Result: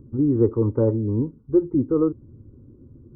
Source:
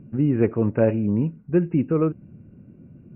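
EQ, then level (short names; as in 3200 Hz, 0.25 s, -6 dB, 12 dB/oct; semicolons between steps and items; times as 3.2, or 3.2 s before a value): polynomial smoothing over 65 samples; low shelf 270 Hz +9 dB; fixed phaser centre 670 Hz, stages 6; 0.0 dB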